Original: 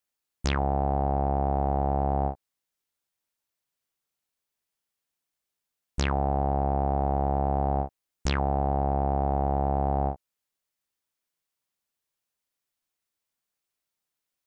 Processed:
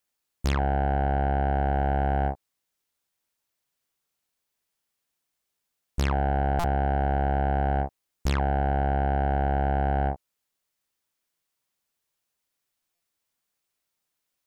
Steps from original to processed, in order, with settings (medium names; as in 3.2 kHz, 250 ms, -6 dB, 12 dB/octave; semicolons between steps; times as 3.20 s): 1.73–2.32 s: treble shelf 5.1 kHz +7.5 dB; saturation -21.5 dBFS, distortion -12 dB; buffer glitch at 6.59/12.95 s, samples 256, times 8; trim +4 dB